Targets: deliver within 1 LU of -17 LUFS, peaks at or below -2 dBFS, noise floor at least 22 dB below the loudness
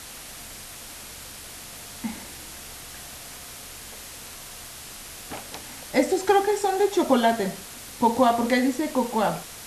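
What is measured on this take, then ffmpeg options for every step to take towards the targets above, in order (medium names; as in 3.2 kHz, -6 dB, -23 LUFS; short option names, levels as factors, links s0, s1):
noise floor -41 dBFS; noise floor target -46 dBFS; loudness -23.5 LUFS; peak level -6.0 dBFS; loudness target -17.0 LUFS
-> -af "afftdn=nr=6:nf=-41"
-af "volume=2.11,alimiter=limit=0.794:level=0:latency=1"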